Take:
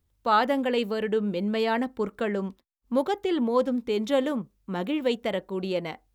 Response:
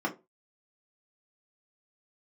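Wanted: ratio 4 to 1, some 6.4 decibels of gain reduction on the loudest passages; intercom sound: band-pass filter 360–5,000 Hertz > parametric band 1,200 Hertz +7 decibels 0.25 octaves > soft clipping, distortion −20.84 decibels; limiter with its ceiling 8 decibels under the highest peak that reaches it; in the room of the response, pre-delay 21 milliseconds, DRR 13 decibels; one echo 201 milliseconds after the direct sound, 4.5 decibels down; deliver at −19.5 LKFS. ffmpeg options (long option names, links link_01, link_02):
-filter_complex "[0:a]acompressor=threshold=-25dB:ratio=4,alimiter=limit=-24dB:level=0:latency=1,aecho=1:1:201:0.596,asplit=2[link_01][link_02];[1:a]atrim=start_sample=2205,adelay=21[link_03];[link_02][link_03]afir=irnorm=-1:irlink=0,volume=-21dB[link_04];[link_01][link_04]amix=inputs=2:normalize=0,highpass=360,lowpass=5000,equalizer=frequency=1200:width_type=o:width=0.25:gain=7,asoftclip=threshold=-23.5dB,volume=15.5dB"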